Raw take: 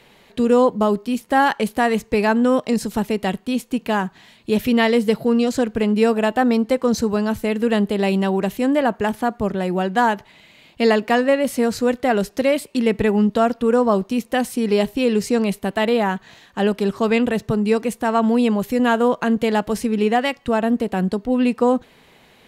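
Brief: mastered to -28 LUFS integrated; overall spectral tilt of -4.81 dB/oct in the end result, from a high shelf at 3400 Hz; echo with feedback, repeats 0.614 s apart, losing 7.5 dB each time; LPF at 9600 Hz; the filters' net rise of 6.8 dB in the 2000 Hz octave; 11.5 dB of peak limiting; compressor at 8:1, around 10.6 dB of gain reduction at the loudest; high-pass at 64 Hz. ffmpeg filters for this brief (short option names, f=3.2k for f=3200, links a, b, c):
-af "highpass=64,lowpass=9.6k,equalizer=f=2k:t=o:g=7.5,highshelf=f=3.4k:g=3,acompressor=threshold=-21dB:ratio=8,alimiter=limit=-21dB:level=0:latency=1,aecho=1:1:614|1228|1842|2456|3070:0.422|0.177|0.0744|0.0312|0.0131,volume=1.5dB"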